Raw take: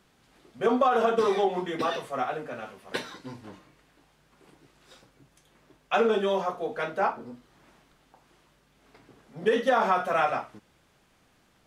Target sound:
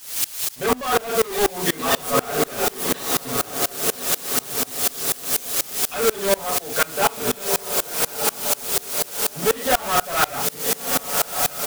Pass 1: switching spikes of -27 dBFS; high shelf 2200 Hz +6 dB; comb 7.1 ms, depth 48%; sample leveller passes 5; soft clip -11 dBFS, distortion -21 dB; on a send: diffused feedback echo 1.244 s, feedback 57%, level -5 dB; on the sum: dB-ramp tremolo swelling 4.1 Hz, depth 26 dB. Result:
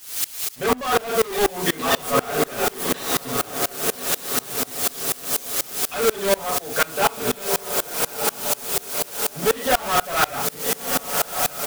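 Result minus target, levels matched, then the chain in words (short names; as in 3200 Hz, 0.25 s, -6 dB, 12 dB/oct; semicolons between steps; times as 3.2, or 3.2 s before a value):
switching spikes: distortion -6 dB
switching spikes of -20.5 dBFS; high shelf 2200 Hz +6 dB; comb 7.1 ms, depth 48%; sample leveller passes 5; soft clip -11 dBFS, distortion -20 dB; on a send: diffused feedback echo 1.244 s, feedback 57%, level -5 dB; on the sum: dB-ramp tremolo swelling 4.1 Hz, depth 26 dB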